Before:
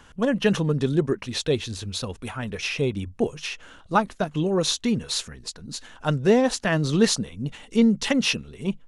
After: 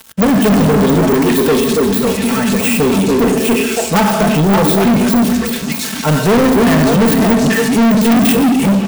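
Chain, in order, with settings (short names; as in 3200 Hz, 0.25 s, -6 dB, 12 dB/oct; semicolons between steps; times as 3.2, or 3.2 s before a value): switching dead time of 0.1 ms; HPF 64 Hz 24 dB/oct; high shelf 3200 Hz +7 dB; comb 4.5 ms, depth 94%; delay with a stepping band-pass 0.282 s, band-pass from 300 Hz, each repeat 1.4 oct, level -0.5 dB; reverb RT60 1.0 s, pre-delay 4 ms, DRR 5 dB; de-esser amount 75%; sample leveller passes 5; high shelf 7100 Hz +9.5 dB; gain -3 dB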